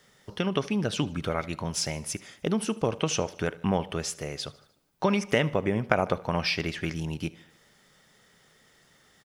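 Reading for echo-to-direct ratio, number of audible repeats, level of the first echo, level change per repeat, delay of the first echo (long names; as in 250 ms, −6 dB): −20.0 dB, 3, −21.5 dB, −5.0 dB, 76 ms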